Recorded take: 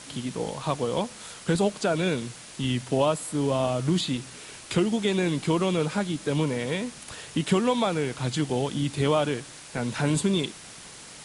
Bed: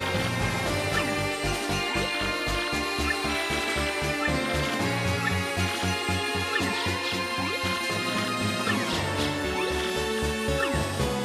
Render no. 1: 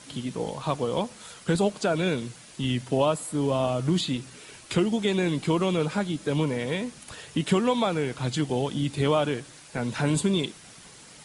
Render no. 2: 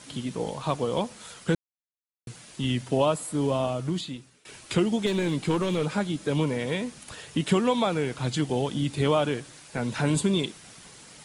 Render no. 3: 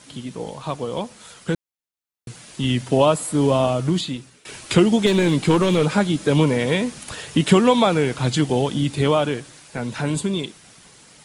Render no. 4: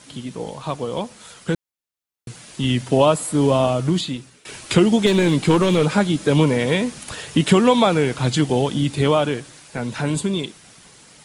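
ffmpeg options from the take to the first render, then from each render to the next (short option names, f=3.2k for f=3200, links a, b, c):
-af "afftdn=nr=6:nf=-45"
-filter_complex "[0:a]asettb=1/sr,asplit=3[a][b][c];[a]atrim=end=5.064[d];[b]atrim=start=5.06:end=5.85,asetpts=PTS-STARTPTS,afade=t=in:d=0.004:c=qsin,afade=t=out:st=0.786:d=0.004:c=qsin,aeval=exprs='clip(val(0),-1,0.0841)':c=same[e];[c]atrim=start=5.846[f];[d][e]acrossfade=d=0.004:c1=hsin:c2=qsin[g];[g][f]acrossfade=d=0.004:c1=qsin:c2=hsin,asplit=4[h][i][j][k];[h]atrim=end=1.55,asetpts=PTS-STARTPTS,afade=t=out:st=1.546:d=0.004:c=hsin[l];[i]atrim=start=1.55:end=2.27,asetpts=PTS-STARTPTS,volume=0[m];[j]atrim=start=2.27:end=4.45,asetpts=PTS-STARTPTS,afade=t=in:d=0.004:c=hsin,afade=t=out:st=1.18:d=1:silence=0.0944061[n];[k]atrim=start=4.45,asetpts=PTS-STARTPTS,afade=t=in:d=0.004:c=hsin:silence=0.0944061[o];[l][m][n][o]concat=n=4:v=0:a=1"
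-af "dynaudnorm=f=240:g=21:m=11.5dB"
-af "volume=1dB,alimiter=limit=-3dB:level=0:latency=1"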